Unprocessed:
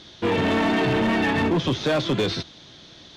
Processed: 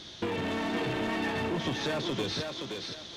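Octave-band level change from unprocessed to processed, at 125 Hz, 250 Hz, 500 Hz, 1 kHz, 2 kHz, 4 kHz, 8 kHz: −10.5, −10.0, −9.5, −9.0, −8.5, −5.5, −3.0 decibels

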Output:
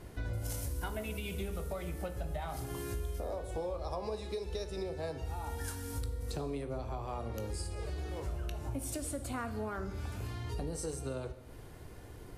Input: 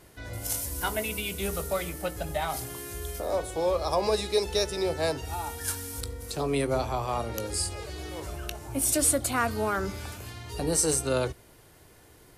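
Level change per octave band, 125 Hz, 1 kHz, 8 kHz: −3.0, −11.0, −16.5 decibels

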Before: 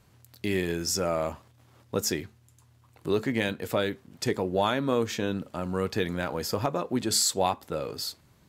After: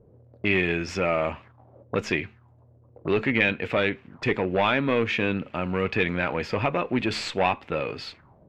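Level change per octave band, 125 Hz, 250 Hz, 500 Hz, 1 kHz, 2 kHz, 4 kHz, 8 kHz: +3.0 dB, +2.5 dB, +2.5 dB, +3.0 dB, +10.0 dB, −1.0 dB, below −15 dB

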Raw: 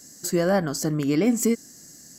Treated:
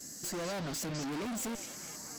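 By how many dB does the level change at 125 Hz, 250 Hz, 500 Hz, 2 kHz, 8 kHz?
−13.5, −16.0, −16.0, −10.0, −7.5 decibels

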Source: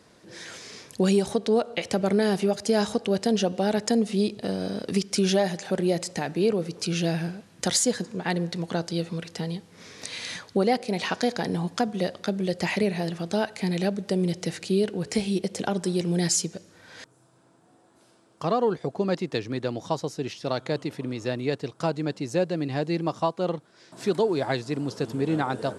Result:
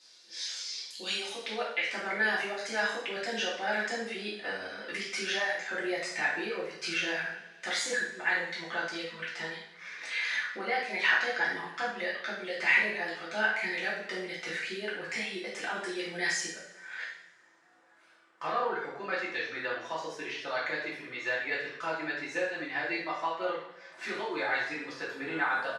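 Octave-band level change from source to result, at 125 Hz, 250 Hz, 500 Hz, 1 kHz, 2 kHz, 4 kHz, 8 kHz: −23.5, −16.5, −10.5, −3.5, +7.5, −2.5, −10.0 decibels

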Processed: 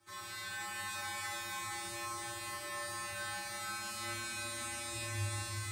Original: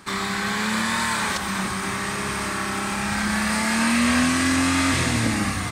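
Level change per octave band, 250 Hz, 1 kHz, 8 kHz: −31.0, −17.0, −13.5 decibels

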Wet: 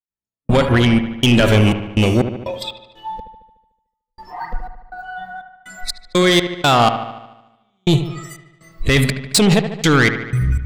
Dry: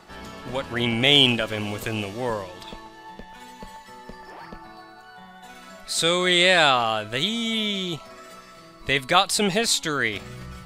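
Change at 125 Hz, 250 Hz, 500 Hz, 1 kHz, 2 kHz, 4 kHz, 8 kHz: +15.0, +11.0, +6.5, +5.0, +3.0, −1.0, +2.5 decibels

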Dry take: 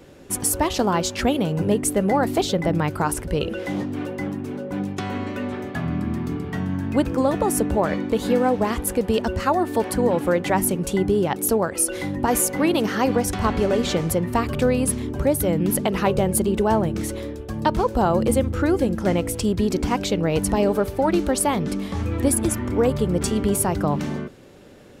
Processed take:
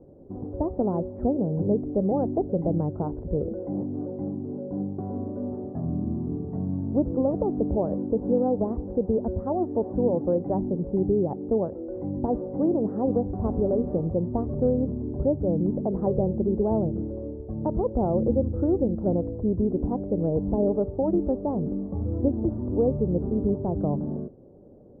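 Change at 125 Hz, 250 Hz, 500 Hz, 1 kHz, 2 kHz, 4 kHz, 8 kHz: −3.0 dB, −3.0 dB, −3.5 dB, −11.0 dB, below −35 dB, below −40 dB, below −40 dB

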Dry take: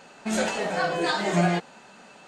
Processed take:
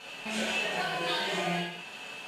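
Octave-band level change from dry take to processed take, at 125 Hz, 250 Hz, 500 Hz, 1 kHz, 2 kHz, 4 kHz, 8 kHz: −11.5, −10.0, −8.0, −6.5, −2.5, +1.5, −6.0 decibels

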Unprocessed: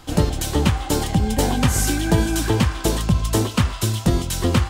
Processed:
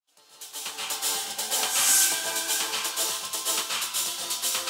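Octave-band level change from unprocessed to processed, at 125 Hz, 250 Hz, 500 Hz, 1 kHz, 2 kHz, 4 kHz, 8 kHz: below −40 dB, −27.5 dB, −15.5 dB, −7.5 dB, −2.5 dB, +1.5 dB, +4.0 dB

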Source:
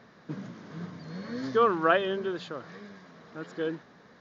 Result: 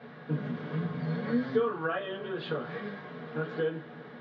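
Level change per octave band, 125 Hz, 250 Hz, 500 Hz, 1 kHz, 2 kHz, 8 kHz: +7.0 dB, +1.5 dB, −2.5 dB, −8.0 dB, −3.5 dB, can't be measured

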